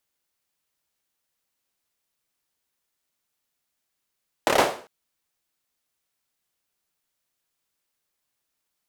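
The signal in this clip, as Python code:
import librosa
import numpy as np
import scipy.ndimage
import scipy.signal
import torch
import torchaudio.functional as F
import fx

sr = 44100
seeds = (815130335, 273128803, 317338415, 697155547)

y = fx.drum_clap(sr, seeds[0], length_s=0.4, bursts=5, spacing_ms=28, hz=570.0, decay_s=0.42)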